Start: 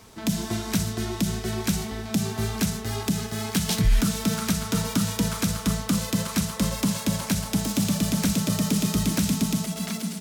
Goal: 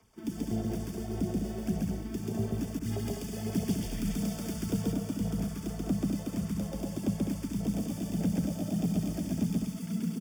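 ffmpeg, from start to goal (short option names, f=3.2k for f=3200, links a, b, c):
-filter_complex "[0:a]afwtdn=0.0501,acrossover=split=130|260|710[a][b][c][d];[a]acompressor=threshold=-44dB:ratio=4[e];[b]acompressor=threshold=-36dB:ratio=4[f];[c]acompressor=threshold=-42dB:ratio=4[g];[d]acompressor=threshold=-47dB:ratio=4[h];[e][f][g][h]amix=inputs=4:normalize=0,acrusher=bits=6:mode=log:mix=0:aa=0.000001,aphaser=in_gain=1:out_gain=1:delay=3.5:decay=0.5:speed=1.7:type=sinusoidal,asuperstop=centerf=4000:order=12:qfactor=6.1,aecho=1:1:134.1|204.1:0.891|0.501,asettb=1/sr,asplit=3[i][j][k];[i]atrim=end=2.794[l];[j]atrim=start=2.79:end=4.92,asetpts=PTS-STARTPTS,afade=t=in:d=0.004:c=qsin,afade=t=out:st=2.126:d=0.004:c=qsin,adynamicequalizer=threshold=0.00224:dfrequency=2000:dqfactor=0.7:tfrequency=2000:tqfactor=0.7:attack=5:release=100:ratio=0.375:range=2.5:mode=boostabove:tftype=highshelf[m];[k]atrim=start=4.916[n];[l][m]acrossfade=d=0.004:c1=hsin:c2=qsin[o];[o][n]acrossfade=d=0.004:c1=qsin:c2=hsin,volume=-2.5dB"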